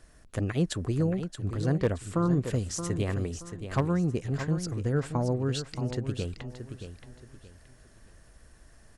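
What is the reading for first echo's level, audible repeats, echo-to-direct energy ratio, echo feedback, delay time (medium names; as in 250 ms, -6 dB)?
-9.5 dB, 3, -9.0 dB, 30%, 625 ms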